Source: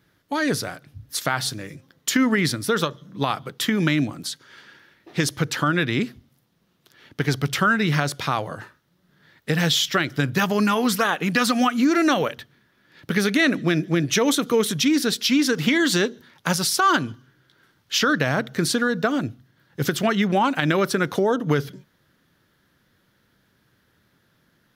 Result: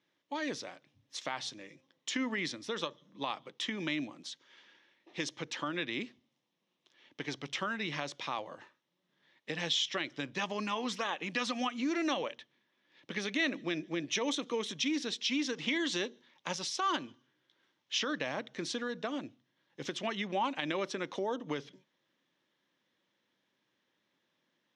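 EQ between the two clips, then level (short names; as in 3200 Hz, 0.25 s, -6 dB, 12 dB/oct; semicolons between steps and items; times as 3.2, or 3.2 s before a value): speaker cabinet 390–5800 Hz, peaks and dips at 430 Hz -7 dB, 700 Hz -6 dB, 1400 Hz -7 dB, 4600 Hz -9 dB; bell 1500 Hz -6.5 dB 0.82 oct; -7.0 dB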